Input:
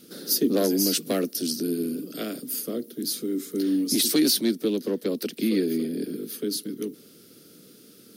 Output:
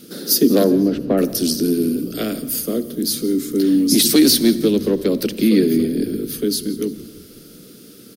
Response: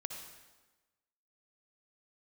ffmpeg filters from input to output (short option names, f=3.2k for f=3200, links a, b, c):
-filter_complex "[0:a]asplit=3[a][b][c];[a]afade=t=out:st=0.63:d=0.02[d];[b]lowpass=1.2k,afade=t=in:st=0.63:d=0.02,afade=t=out:st=1.17:d=0.02[e];[c]afade=t=in:st=1.17:d=0.02[f];[d][e][f]amix=inputs=3:normalize=0,asplit=5[g][h][i][j][k];[h]adelay=171,afreqshift=-67,volume=-19.5dB[l];[i]adelay=342,afreqshift=-134,volume=-26.2dB[m];[j]adelay=513,afreqshift=-201,volume=-33dB[n];[k]adelay=684,afreqshift=-268,volume=-39.7dB[o];[g][l][m][n][o]amix=inputs=5:normalize=0,asplit=2[p][q];[1:a]atrim=start_sample=2205,lowshelf=f=420:g=11[r];[q][r]afir=irnorm=-1:irlink=0,volume=-9.5dB[s];[p][s]amix=inputs=2:normalize=0,volume=5.5dB"